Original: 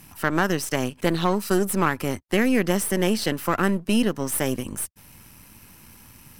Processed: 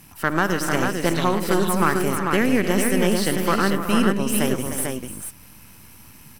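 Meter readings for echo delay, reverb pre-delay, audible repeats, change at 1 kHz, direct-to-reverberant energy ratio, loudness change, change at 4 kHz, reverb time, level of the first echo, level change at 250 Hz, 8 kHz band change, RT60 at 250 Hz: 69 ms, none, 6, +4.0 dB, none, +2.5 dB, +2.0 dB, none, -17.5 dB, +2.0 dB, +2.0 dB, none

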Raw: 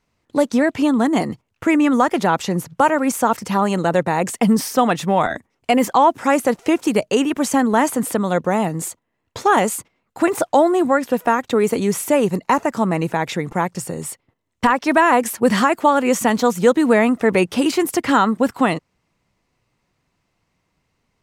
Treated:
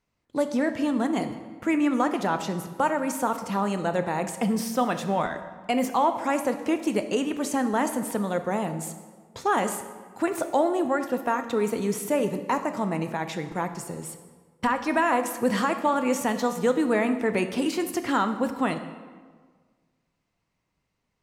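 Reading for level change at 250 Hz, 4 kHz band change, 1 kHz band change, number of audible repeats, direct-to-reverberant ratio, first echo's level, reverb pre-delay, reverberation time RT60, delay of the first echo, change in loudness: -8.0 dB, -8.5 dB, -8.5 dB, none, 8.0 dB, none, 8 ms, 1.6 s, none, -8.5 dB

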